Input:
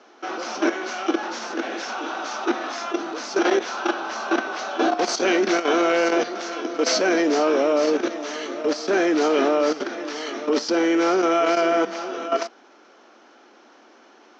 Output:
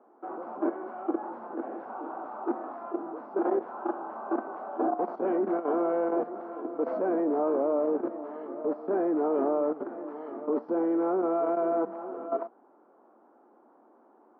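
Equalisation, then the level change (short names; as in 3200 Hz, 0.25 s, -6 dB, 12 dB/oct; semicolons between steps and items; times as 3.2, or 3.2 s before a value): Chebyshev low-pass 1000 Hz, order 3; -6.0 dB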